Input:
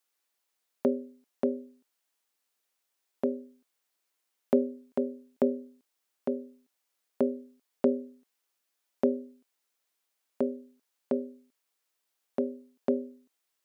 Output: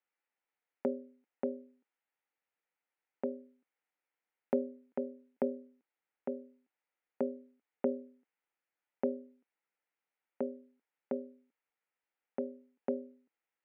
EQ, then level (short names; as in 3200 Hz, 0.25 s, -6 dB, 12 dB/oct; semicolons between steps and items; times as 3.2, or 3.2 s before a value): speaker cabinet 250–2100 Hz, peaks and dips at 260 Hz -6 dB, 390 Hz -8 dB, 630 Hz -9 dB, 1100 Hz -10 dB, 1600 Hz -5 dB; +1.0 dB